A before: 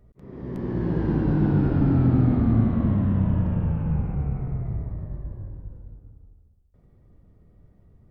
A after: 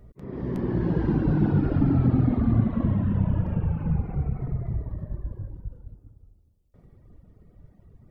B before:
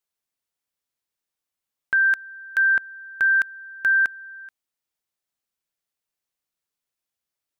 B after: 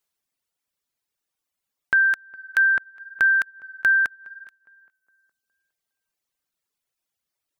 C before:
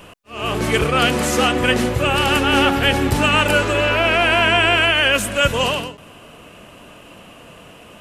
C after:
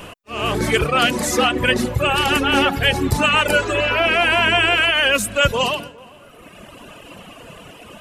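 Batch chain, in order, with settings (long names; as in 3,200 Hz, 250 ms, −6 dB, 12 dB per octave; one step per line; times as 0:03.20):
reverb reduction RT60 1.7 s
in parallel at −0.5 dB: downward compressor, threshold −32 dBFS
on the sum: tape delay 412 ms, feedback 42%, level −21 dB, low-pass 1,300 Hz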